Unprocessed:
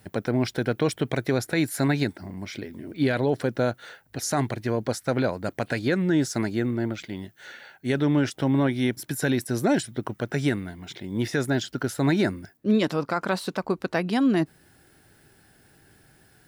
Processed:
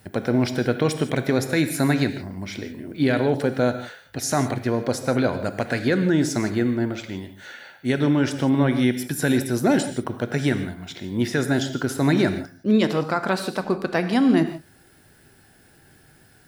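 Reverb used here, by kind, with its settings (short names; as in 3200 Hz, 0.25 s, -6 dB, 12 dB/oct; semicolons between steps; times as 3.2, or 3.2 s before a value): non-linear reverb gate 0.19 s flat, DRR 8.5 dB; gain +2.5 dB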